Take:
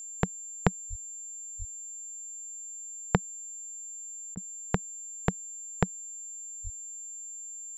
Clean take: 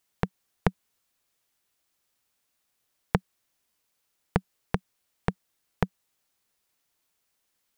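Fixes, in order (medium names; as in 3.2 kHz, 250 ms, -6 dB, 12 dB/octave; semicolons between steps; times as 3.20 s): band-stop 7.3 kHz, Q 30; 0.89–1.01 s: high-pass 140 Hz 24 dB/octave; 1.58–1.70 s: high-pass 140 Hz 24 dB/octave; 6.63–6.75 s: high-pass 140 Hz 24 dB/octave; interpolate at 4.35 s, 19 ms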